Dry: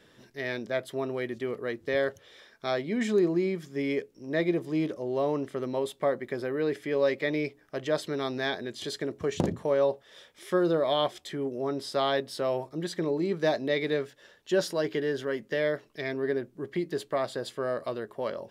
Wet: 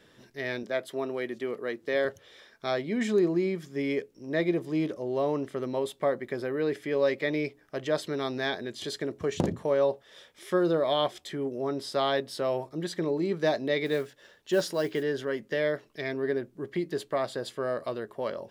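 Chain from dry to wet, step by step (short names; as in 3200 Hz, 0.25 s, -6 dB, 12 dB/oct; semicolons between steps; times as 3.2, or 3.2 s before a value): 0.63–2.05 HPF 190 Hz 12 dB/oct; 13.85–15.03 modulation noise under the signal 28 dB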